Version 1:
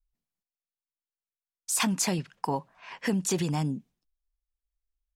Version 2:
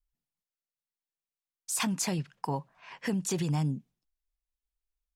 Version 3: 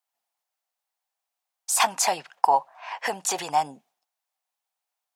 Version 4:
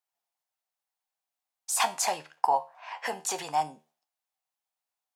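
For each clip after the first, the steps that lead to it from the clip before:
bell 140 Hz +6.5 dB 0.42 oct; gain -4 dB
resonant high-pass 750 Hz, resonance Q 3.9; gain +8 dB
resonator 77 Hz, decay 0.31 s, harmonics all, mix 60%

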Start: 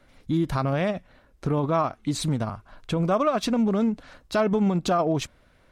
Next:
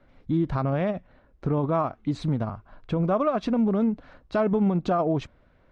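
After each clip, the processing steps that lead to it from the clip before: LPF 4700 Hz 12 dB/oct; high shelf 2100 Hz -11 dB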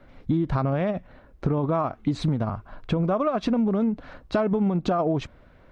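compressor, threshold -27 dBFS, peak gain reduction 8.5 dB; gain +7 dB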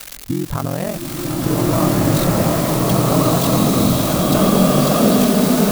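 switching spikes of -19.5 dBFS; ring modulator 22 Hz; bloom reverb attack 1.71 s, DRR -8 dB; gain +4.5 dB

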